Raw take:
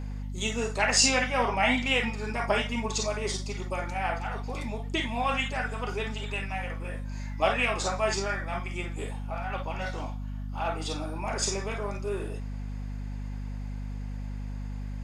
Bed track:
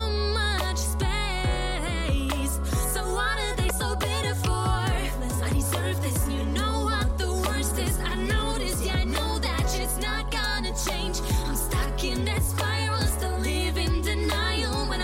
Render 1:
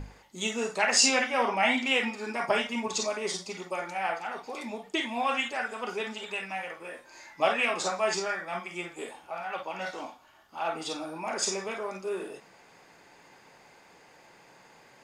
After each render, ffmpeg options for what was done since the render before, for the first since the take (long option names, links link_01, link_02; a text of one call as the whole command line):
ffmpeg -i in.wav -af "bandreject=frequency=50:width_type=h:width=6,bandreject=frequency=100:width_type=h:width=6,bandreject=frequency=150:width_type=h:width=6,bandreject=frequency=200:width_type=h:width=6,bandreject=frequency=250:width_type=h:width=6" out.wav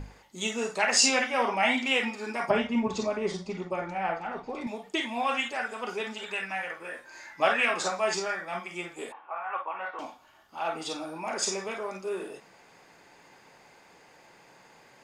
ffmpeg -i in.wav -filter_complex "[0:a]asettb=1/sr,asplit=3[link_01][link_02][link_03];[link_01]atrim=end=2.504[link_04];[link_02]atrim=start=2.5:end=4.67,asetpts=PTS-STARTPTS,afade=type=in:duration=0.004:curve=qsin,afade=type=out:start_time=2.166:duration=0.004:curve=qsin,aemphasis=mode=reproduction:type=riaa[link_05];[link_03]atrim=start=4.666[link_06];[link_04][link_05]acrossfade=duration=0.004:curve1=hsin:curve2=qsin[link_07];[link_07][link_06]acrossfade=duration=0.004:curve1=qsin:curve2=hsin,asettb=1/sr,asplit=3[link_08][link_09][link_10];[link_08]atrim=end=6.194[link_11];[link_09]atrim=start=6.19:end=7.88,asetpts=PTS-STARTPTS,afade=type=in:duration=0.004:curve=qsin,afade=type=out:start_time=1.686:duration=0.004:curve=qsin,equalizer=frequency=1600:width_type=o:width=0.53:gain=7.5[link_12];[link_10]atrim=start=7.876[link_13];[link_11][link_12]acrossfade=duration=0.004:curve1=hsin:curve2=qsin[link_14];[link_14][link_13]acrossfade=duration=0.004:curve1=qsin:curve2=hsin,asettb=1/sr,asplit=3[link_15][link_16][link_17];[link_15]atrim=end=9.124[link_18];[link_16]atrim=start=9.12:end=9.99,asetpts=PTS-STARTPTS,afade=type=in:duration=0.004:curve=qsin,afade=type=out:start_time=0.866:duration=0.004:curve=qsin,highpass=480,equalizer=frequency=600:width_type=q:width=4:gain=-3,equalizer=frequency=1100:width_type=q:width=4:gain=10,equalizer=frequency=2100:width_type=q:width=4:gain=-3,lowpass=frequency=2400:width=0.5412,lowpass=frequency=2400:width=1.3066[link_19];[link_17]atrim=start=9.986[link_20];[link_18][link_19]acrossfade=duration=0.004:curve1=hsin:curve2=qsin[link_21];[link_21][link_20]acrossfade=duration=0.004:curve1=qsin:curve2=hsin" out.wav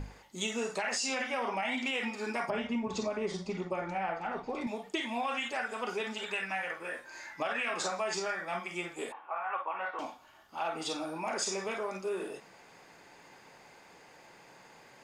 ffmpeg -i in.wav -af "alimiter=limit=-19dB:level=0:latency=1:release=29,acompressor=threshold=-30dB:ratio=6" out.wav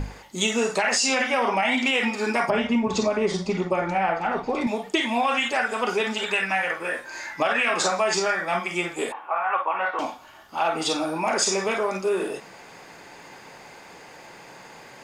ffmpeg -i in.wav -af "volume=11dB" out.wav